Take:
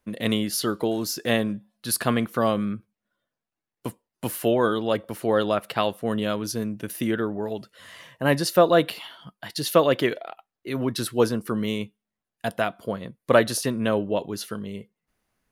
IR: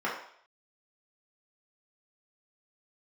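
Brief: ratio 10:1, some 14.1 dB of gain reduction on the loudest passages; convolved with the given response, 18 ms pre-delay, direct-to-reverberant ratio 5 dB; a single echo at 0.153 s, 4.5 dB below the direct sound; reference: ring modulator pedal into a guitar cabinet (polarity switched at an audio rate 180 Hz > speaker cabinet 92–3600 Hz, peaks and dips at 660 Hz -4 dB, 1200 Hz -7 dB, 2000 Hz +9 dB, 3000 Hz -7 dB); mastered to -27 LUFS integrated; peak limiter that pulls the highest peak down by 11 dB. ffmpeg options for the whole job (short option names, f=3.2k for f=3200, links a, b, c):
-filter_complex "[0:a]acompressor=threshold=-26dB:ratio=10,alimiter=limit=-24dB:level=0:latency=1,aecho=1:1:153:0.596,asplit=2[a][b];[1:a]atrim=start_sample=2205,adelay=18[c];[b][c]afir=irnorm=-1:irlink=0,volume=-15dB[d];[a][d]amix=inputs=2:normalize=0,aeval=exprs='val(0)*sgn(sin(2*PI*180*n/s))':c=same,highpass=92,equalizer=f=660:t=q:w=4:g=-4,equalizer=f=1.2k:t=q:w=4:g=-7,equalizer=f=2k:t=q:w=4:g=9,equalizer=f=3k:t=q:w=4:g=-7,lowpass=f=3.6k:w=0.5412,lowpass=f=3.6k:w=1.3066,volume=8.5dB"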